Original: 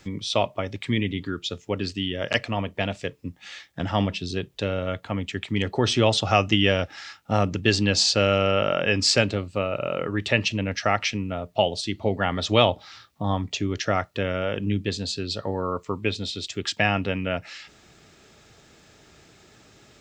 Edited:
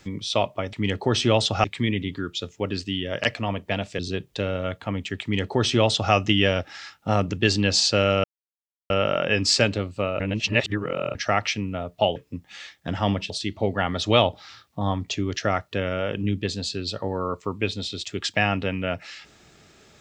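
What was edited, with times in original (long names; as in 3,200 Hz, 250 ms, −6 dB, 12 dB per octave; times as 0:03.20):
0:03.08–0:04.22: move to 0:11.73
0:05.45–0:06.36: duplicate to 0:00.73
0:08.47: splice in silence 0.66 s
0:09.77–0:10.72: reverse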